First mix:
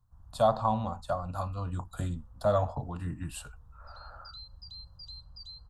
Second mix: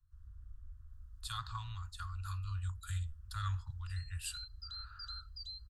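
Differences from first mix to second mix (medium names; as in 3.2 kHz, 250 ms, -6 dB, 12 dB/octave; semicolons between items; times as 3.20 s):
speech: entry +0.90 s; master: add inverse Chebyshev band-stop 190–710 Hz, stop band 50 dB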